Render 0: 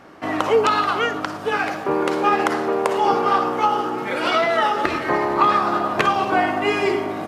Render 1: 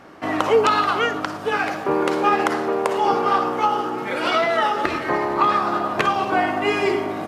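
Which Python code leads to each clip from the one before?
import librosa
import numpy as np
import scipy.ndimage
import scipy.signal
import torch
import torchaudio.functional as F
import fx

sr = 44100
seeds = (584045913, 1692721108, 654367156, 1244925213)

y = fx.rider(x, sr, range_db=3, speed_s=2.0)
y = F.gain(torch.from_numpy(y), -1.0).numpy()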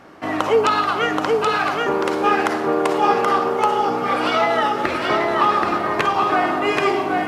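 y = x + 10.0 ** (-3.0 / 20.0) * np.pad(x, (int(778 * sr / 1000.0), 0))[:len(x)]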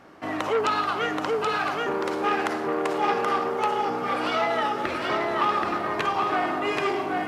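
y = fx.transformer_sat(x, sr, knee_hz=1600.0)
y = F.gain(torch.from_numpy(y), -5.5).numpy()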